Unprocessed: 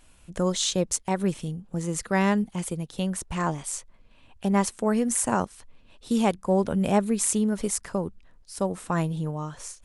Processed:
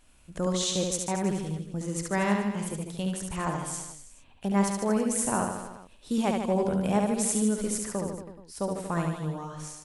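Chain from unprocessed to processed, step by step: reverse bouncing-ball echo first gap 70 ms, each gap 1.1×, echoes 5; trim -4.5 dB

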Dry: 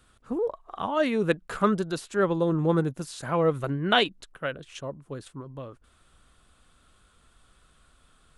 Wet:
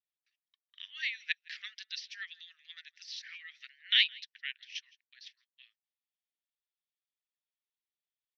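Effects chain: Chebyshev band-pass 1.8–5.8 kHz, order 5; echo from a far wall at 28 m, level -22 dB; harmonic-percussive split percussive +9 dB; gate -59 dBFS, range -32 dB; trim -5.5 dB

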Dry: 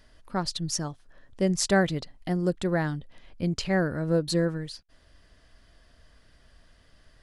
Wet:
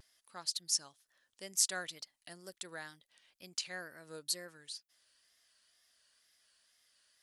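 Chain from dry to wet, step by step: differentiator; vibrato 2.1 Hz 94 cents

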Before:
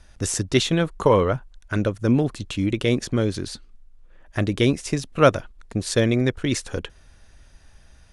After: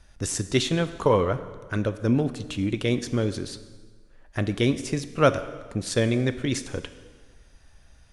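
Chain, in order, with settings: plate-style reverb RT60 1.5 s, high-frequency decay 0.85×, DRR 11 dB; trim -3.5 dB

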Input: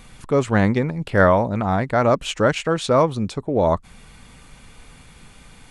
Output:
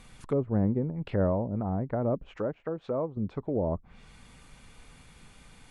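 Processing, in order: low-pass that closes with the level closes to 500 Hz, closed at -17 dBFS; 2.36–3.17 s: bass shelf 240 Hz -11 dB; trim -7.5 dB

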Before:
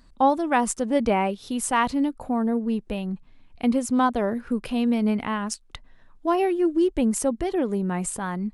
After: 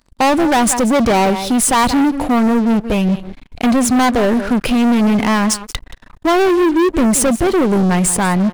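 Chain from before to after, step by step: delay 177 ms -18 dB; waveshaping leveller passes 5

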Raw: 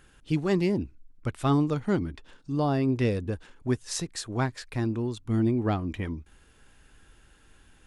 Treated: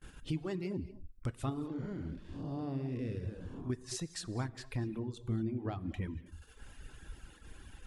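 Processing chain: 1.49–3.70 s: spectral blur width 270 ms; compression 2.5:1, threshold -48 dBFS, peak gain reduction 18.5 dB; gate -58 dBFS, range -30 dB; bass shelf 290 Hz +5 dB; gated-style reverb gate 270 ms flat, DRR 6 dB; reverb removal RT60 1 s; trim +3.5 dB

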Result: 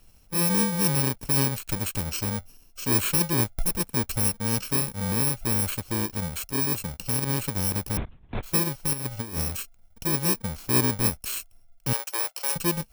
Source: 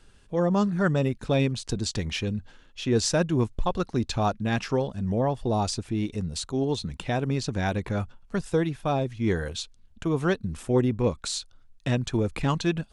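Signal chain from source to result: bit-reversed sample order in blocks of 64 samples; 7.97–8.43 s: LPC vocoder at 8 kHz whisper; 8.93–9.57 s: compressor with a negative ratio -29 dBFS, ratio -0.5; 11.93–12.56 s: high-pass 530 Hz 24 dB/octave

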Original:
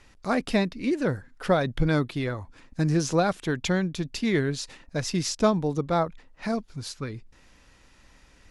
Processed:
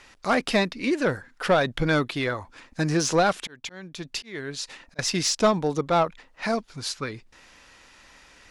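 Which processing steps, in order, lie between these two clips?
3.40–4.99 s: slow attack 701 ms; overdrive pedal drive 13 dB, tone 7.6 kHz, clips at -9.5 dBFS

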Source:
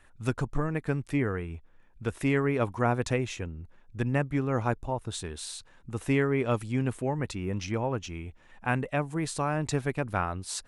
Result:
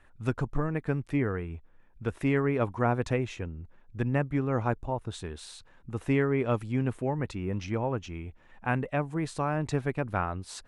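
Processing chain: treble shelf 4.2 kHz -11 dB

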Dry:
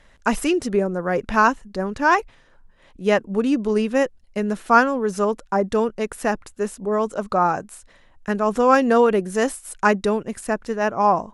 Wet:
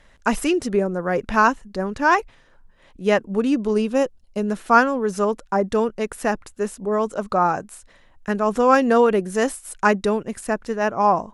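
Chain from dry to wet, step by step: 3.74–4.47 s: peaking EQ 1.9 kHz -6.5 dB -> -13 dB 0.51 oct

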